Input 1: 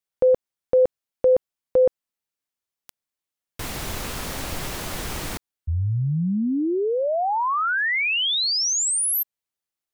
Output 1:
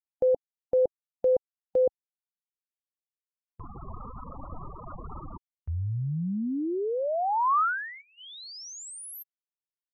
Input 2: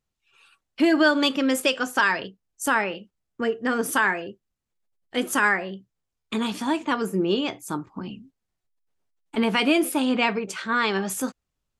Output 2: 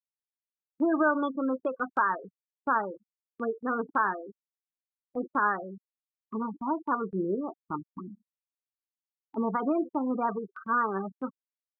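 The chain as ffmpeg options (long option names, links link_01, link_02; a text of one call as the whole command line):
ffmpeg -i in.wav -af "highshelf=frequency=1700:width_type=q:width=3:gain=-11,afftfilt=real='re*gte(hypot(re,im),0.0891)':imag='im*gte(hypot(re,im),0.0891)':win_size=1024:overlap=0.75,agate=range=-14dB:threshold=-41dB:ratio=16:release=36:detection=rms,volume=-7dB" out.wav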